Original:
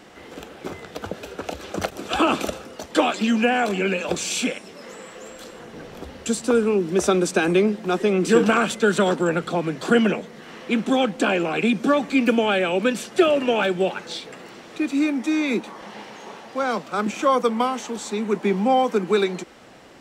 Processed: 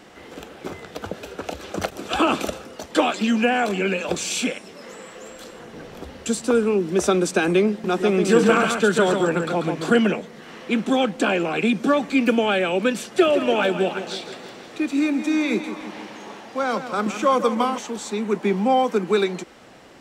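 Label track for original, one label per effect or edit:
7.700000	9.960000	delay 139 ms -5.5 dB
13.120000	17.780000	feedback delay 163 ms, feedback 57%, level -11 dB

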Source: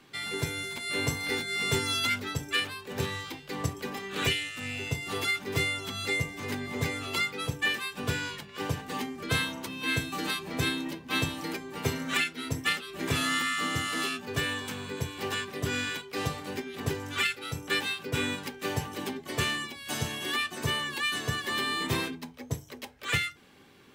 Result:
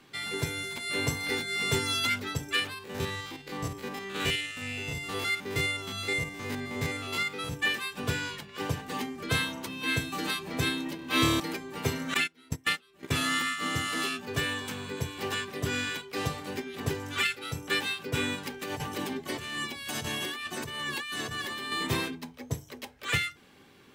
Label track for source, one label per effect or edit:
2.740000	7.550000	spectrogram pixelated in time every 50 ms
10.960000	11.400000	flutter echo walls apart 4.7 m, dies away in 1.2 s
12.140000	13.660000	gate -31 dBFS, range -20 dB
18.500000	21.720000	compressor with a negative ratio -35 dBFS

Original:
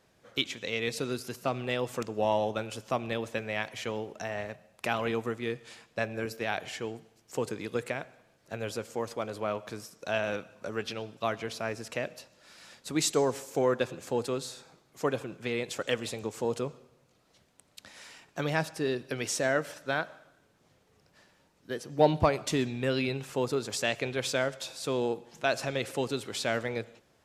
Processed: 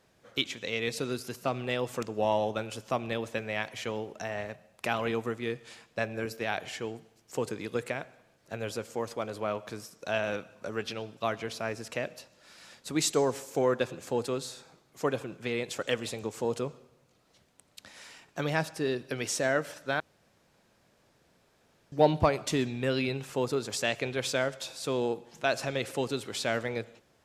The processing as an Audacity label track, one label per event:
20.000000	21.920000	room tone

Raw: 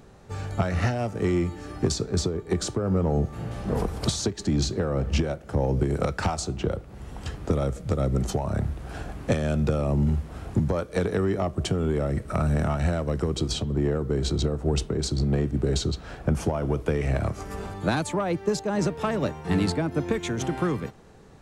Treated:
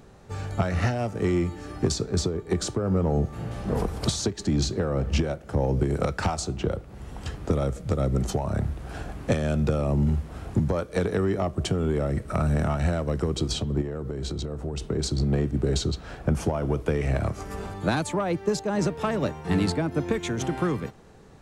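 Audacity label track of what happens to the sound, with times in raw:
13.810000	14.850000	compression, threshold -27 dBFS

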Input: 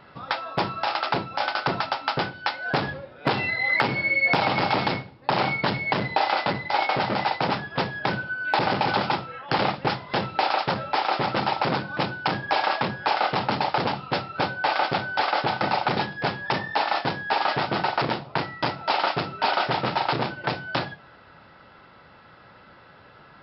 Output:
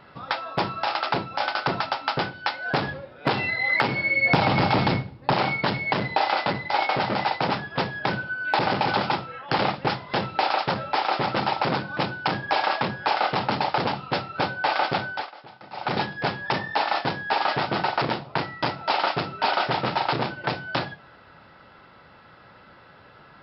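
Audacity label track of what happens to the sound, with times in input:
4.170000	5.340000	bass shelf 230 Hz +10.5 dB
15.050000	15.960000	dip -21 dB, fades 0.25 s

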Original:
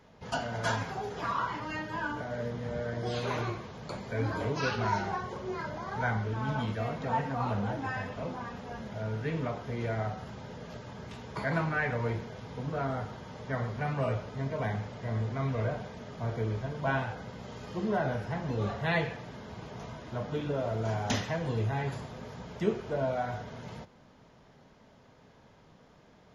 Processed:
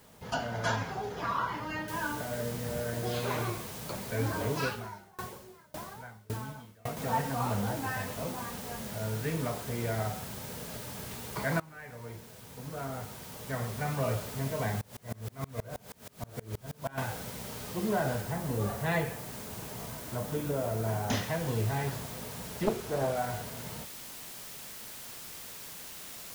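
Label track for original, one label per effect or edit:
1.880000	1.880000	noise floor step -62 dB -45 dB
4.630000	6.970000	sawtooth tremolo in dB decaying 1.8 Hz, depth 29 dB
11.600000	14.140000	fade in, from -22.5 dB
14.810000	16.980000	sawtooth tremolo in dB swelling 6.3 Hz, depth 29 dB
18.190000	21.130000	dynamic bell 3.5 kHz, up to -5 dB, over -48 dBFS, Q 0.71
22.630000	23.170000	loudspeaker Doppler distortion depth 0.74 ms

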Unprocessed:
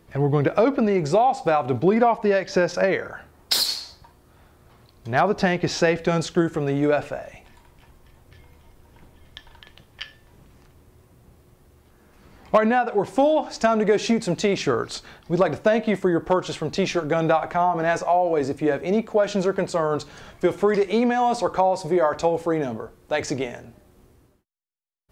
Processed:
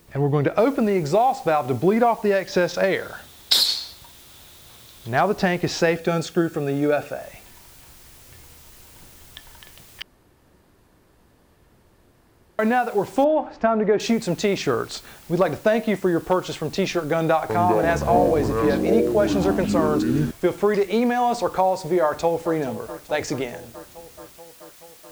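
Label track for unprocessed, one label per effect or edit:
0.580000	0.580000	noise floor step -60 dB -49 dB
2.520000	5.090000	peaking EQ 3.6 kHz +9.5 dB 0.37 oct
5.960000	7.210000	comb of notches 1 kHz
10.020000	12.590000	room tone
13.240000	14.000000	low-pass 1.8 kHz
17.160000	20.310000	ever faster or slower copies 333 ms, each echo -7 st, echoes 3
22.020000	22.540000	echo throw 430 ms, feedback 75%, level -14.5 dB

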